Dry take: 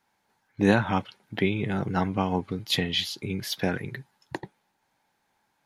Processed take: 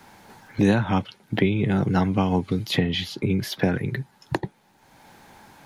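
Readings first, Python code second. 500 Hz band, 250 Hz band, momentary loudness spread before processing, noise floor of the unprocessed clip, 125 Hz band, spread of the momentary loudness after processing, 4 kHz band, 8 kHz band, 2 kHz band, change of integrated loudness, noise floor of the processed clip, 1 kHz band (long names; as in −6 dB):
+3.0 dB, +5.0 dB, 17 LU, −74 dBFS, +6.5 dB, 10 LU, −1.0 dB, −1.0 dB, +0.5 dB, +3.0 dB, −60 dBFS, +1.5 dB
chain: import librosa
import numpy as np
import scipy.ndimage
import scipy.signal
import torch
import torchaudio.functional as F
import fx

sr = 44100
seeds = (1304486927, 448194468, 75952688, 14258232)

y = fx.low_shelf(x, sr, hz=490.0, db=7.0)
y = fx.band_squash(y, sr, depth_pct=70)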